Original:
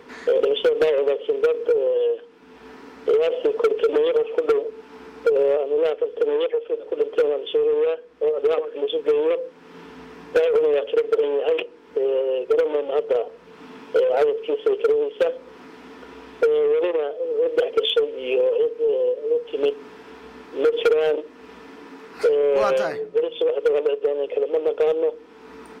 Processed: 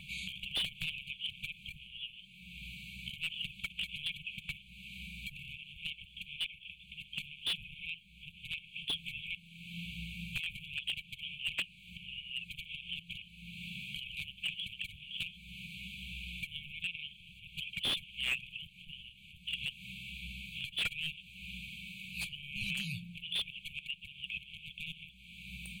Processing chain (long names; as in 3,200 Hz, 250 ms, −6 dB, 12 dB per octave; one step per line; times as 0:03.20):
dynamic equaliser 1,400 Hz, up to −4 dB, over −38 dBFS, Q 0.94
downward compressor 10 to 1, threshold −23 dBFS, peak gain reduction 9 dB
linear-phase brick-wall band-stop 200–2,200 Hz
phaser with its sweep stopped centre 1,500 Hz, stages 6
slew-rate limiting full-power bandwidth 31 Hz
level +9.5 dB